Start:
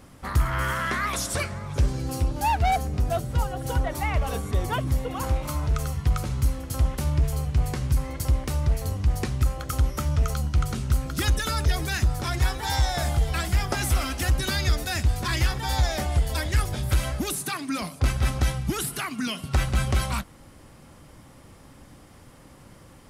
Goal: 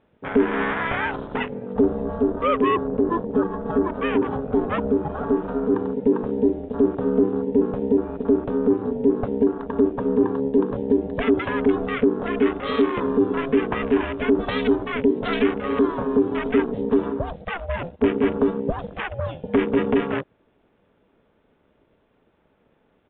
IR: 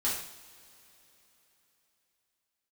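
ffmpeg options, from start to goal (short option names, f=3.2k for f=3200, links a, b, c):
-af "aeval=exprs='val(0)*sin(2*PI*340*n/s)':c=same,afwtdn=0.0178,aresample=8000,aresample=44100,volume=5.5dB"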